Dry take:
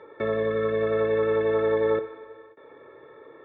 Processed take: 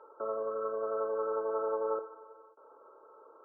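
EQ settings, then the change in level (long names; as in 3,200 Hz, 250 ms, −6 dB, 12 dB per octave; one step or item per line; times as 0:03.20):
high-pass filter 760 Hz 12 dB per octave
linear-phase brick-wall low-pass 1,600 Hz
high-frequency loss of the air 340 metres
0.0 dB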